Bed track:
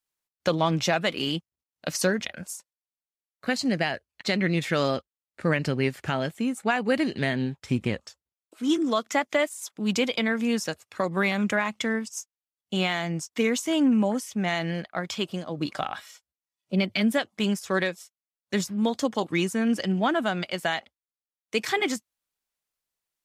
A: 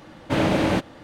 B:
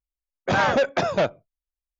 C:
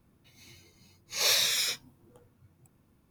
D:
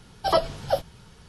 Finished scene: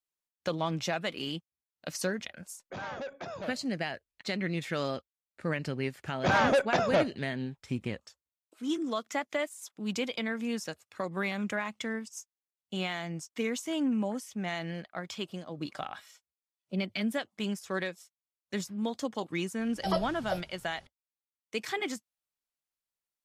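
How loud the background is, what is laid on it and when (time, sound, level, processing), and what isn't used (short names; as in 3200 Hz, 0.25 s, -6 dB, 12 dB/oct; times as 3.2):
bed track -8 dB
2.24 add B -8.5 dB + limiter -25 dBFS
5.76 add B -4.5 dB
19.59 add D -9.5 dB
not used: A, C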